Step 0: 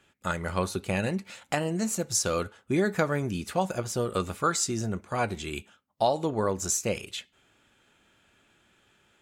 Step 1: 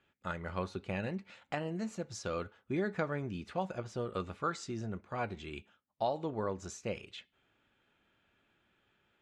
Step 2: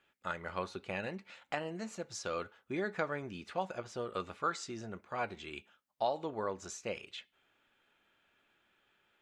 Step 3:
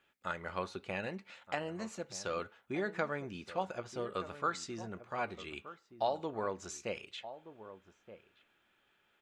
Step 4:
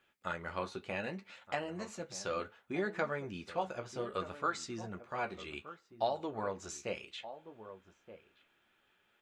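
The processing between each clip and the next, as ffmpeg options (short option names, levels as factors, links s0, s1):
-af "lowpass=3600,volume=0.376"
-af "equalizer=f=82:w=0.3:g=-11,volume=1.26"
-filter_complex "[0:a]asplit=2[s0][s1];[s1]adelay=1224,volume=0.224,highshelf=f=4000:g=-27.6[s2];[s0][s2]amix=inputs=2:normalize=0"
-af "flanger=delay=8:depth=7.9:regen=-39:speed=0.65:shape=triangular,volume=1.58"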